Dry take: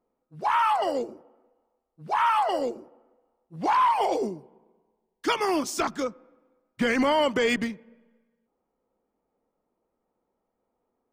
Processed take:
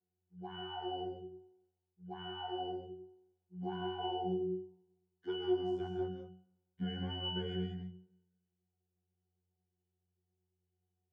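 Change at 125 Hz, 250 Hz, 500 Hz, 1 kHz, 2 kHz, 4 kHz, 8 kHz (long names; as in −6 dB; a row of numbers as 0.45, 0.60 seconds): +2.0 dB, −9.5 dB, −11.5 dB, −19.5 dB, −23.0 dB, −7.5 dB, below −40 dB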